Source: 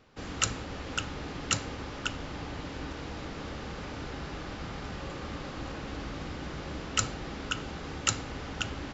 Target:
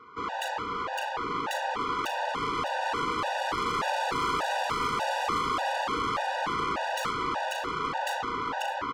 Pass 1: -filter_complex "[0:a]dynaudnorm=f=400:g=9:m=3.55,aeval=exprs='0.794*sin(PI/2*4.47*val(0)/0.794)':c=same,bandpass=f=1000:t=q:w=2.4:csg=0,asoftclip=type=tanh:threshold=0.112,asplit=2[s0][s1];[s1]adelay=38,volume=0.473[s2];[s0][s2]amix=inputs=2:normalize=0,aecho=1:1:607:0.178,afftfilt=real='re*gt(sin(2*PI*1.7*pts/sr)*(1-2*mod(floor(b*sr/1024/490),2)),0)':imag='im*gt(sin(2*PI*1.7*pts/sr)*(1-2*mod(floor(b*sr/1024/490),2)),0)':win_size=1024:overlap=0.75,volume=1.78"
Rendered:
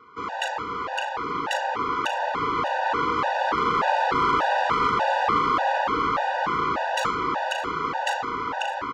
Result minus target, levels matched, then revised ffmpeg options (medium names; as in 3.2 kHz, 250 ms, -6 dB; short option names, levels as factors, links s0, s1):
saturation: distortion -8 dB
-filter_complex "[0:a]dynaudnorm=f=400:g=9:m=3.55,aeval=exprs='0.794*sin(PI/2*4.47*val(0)/0.794)':c=same,bandpass=f=1000:t=q:w=2.4:csg=0,asoftclip=type=tanh:threshold=0.0316,asplit=2[s0][s1];[s1]adelay=38,volume=0.473[s2];[s0][s2]amix=inputs=2:normalize=0,aecho=1:1:607:0.178,afftfilt=real='re*gt(sin(2*PI*1.7*pts/sr)*(1-2*mod(floor(b*sr/1024/490),2)),0)':imag='im*gt(sin(2*PI*1.7*pts/sr)*(1-2*mod(floor(b*sr/1024/490),2)),0)':win_size=1024:overlap=0.75,volume=1.78"